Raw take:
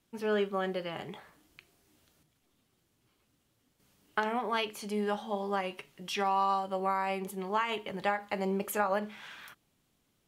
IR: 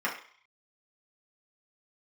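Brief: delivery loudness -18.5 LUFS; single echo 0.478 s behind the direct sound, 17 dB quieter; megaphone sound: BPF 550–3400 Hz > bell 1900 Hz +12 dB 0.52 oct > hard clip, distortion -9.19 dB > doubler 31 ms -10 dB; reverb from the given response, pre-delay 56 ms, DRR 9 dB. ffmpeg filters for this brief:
-filter_complex "[0:a]aecho=1:1:478:0.141,asplit=2[a][b];[1:a]atrim=start_sample=2205,adelay=56[c];[b][c]afir=irnorm=-1:irlink=0,volume=-19dB[d];[a][d]amix=inputs=2:normalize=0,highpass=550,lowpass=3.4k,equalizer=f=1.9k:t=o:w=0.52:g=12,asoftclip=type=hard:threshold=-26.5dB,asplit=2[e][f];[f]adelay=31,volume=-10dB[g];[e][g]amix=inputs=2:normalize=0,volume=15dB"

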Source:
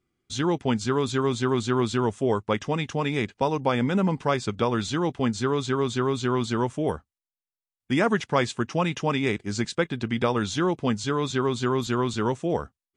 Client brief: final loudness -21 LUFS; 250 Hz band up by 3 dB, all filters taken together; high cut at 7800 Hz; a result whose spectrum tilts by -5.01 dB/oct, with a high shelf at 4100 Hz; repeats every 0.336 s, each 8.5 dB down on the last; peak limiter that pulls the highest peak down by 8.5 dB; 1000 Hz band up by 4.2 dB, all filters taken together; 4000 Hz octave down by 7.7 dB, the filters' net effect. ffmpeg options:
-af "lowpass=7.8k,equalizer=f=250:t=o:g=3.5,equalizer=f=1k:t=o:g=5.5,equalizer=f=4k:t=o:g=-6,highshelf=f=4.1k:g=-7,alimiter=limit=-14.5dB:level=0:latency=1,aecho=1:1:336|672|1008|1344:0.376|0.143|0.0543|0.0206,volume=4.5dB"

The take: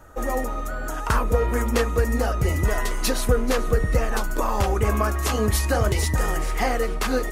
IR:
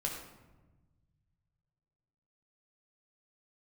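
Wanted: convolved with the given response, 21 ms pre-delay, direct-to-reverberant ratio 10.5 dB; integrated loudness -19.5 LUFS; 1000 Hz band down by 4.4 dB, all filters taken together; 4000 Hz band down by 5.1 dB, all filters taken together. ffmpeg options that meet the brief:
-filter_complex "[0:a]equalizer=f=1k:t=o:g=-5.5,equalizer=f=4k:t=o:g=-6.5,asplit=2[a][b];[1:a]atrim=start_sample=2205,adelay=21[c];[b][c]afir=irnorm=-1:irlink=0,volume=-13dB[d];[a][d]amix=inputs=2:normalize=0,volume=4.5dB"

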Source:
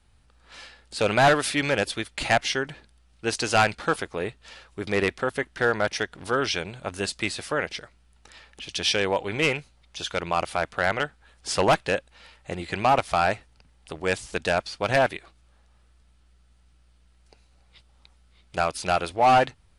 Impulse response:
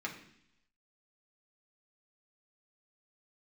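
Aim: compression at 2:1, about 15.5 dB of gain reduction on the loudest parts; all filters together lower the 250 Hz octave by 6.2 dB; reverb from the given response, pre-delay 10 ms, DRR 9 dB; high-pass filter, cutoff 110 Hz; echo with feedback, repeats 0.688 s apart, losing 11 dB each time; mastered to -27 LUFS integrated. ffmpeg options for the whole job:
-filter_complex "[0:a]highpass=110,equalizer=f=250:t=o:g=-8.5,acompressor=threshold=-45dB:ratio=2,aecho=1:1:688|1376|2064:0.282|0.0789|0.0221,asplit=2[a][b];[1:a]atrim=start_sample=2205,adelay=10[c];[b][c]afir=irnorm=-1:irlink=0,volume=-11.5dB[d];[a][d]amix=inputs=2:normalize=0,volume=12dB"

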